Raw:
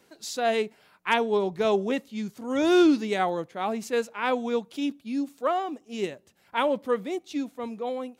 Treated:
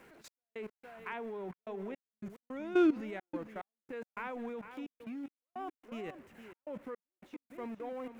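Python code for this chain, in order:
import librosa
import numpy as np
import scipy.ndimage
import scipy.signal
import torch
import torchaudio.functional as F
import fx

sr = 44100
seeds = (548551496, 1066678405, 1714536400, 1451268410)

p1 = x + 0.5 * 10.0 ** (-36.0 / 20.0) * np.sign(x)
p2 = fx.level_steps(p1, sr, step_db=17)
p3 = fx.high_shelf_res(p2, sr, hz=3000.0, db=-10.5, q=1.5)
p4 = p3 + fx.echo_single(p3, sr, ms=463, db=-11.0, dry=0)
p5 = fx.step_gate(p4, sr, bpm=108, pattern='xx..x.xxxxx.', floor_db=-60.0, edge_ms=4.5)
y = p5 * 10.0 ** (-7.0 / 20.0)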